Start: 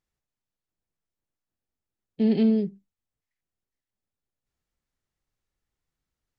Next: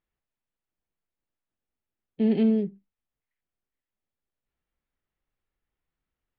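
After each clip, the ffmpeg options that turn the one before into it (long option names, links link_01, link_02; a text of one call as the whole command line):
ffmpeg -i in.wav -af "lowpass=frequency=3300:width=0.5412,lowpass=frequency=3300:width=1.3066,equalizer=frequency=110:width=1.2:gain=-4.5" out.wav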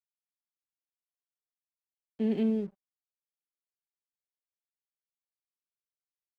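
ffmpeg -i in.wav -af "highpass=150,aeval=exprs='sgn(val(0))*max(abs(val(0))-0.00299,0)':channel_layout=same,volume=-5dB" out.wav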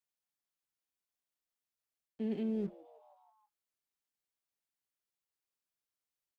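ffmpeg -i in.wav -filter_complex "[0:a]areverse,acompressor=threshold=-35dB:ratio=6,areverse,asplit=6[link_01][link_02][link_03][link_04][link_05][link_06];[link_02]adelay=158,afreqshift=130,volume=-23dB[link_07];[link_03]adelay=316,afreqshift=260,volume=-26.9dB[link_08];[link_04]adelay=474,afreqshift=390,volume=-30.8dB[link_09];[link_05]adelay=632,afreqshift=520,volume=-34.6dB[link_10];[link_06]adelay=790,afreqshift=650,volume=-38.5dB[link_11];[link_01][link_07][link_08][link_09][link_10][link_11]amix=inputs=6:normalize=0,volume=2dB" out.wav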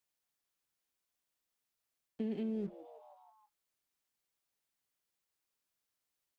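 ffmpeg -i in.wav -af "acompressor=threshold=-39dB:ratio=6,volume=4.5dB" out.wav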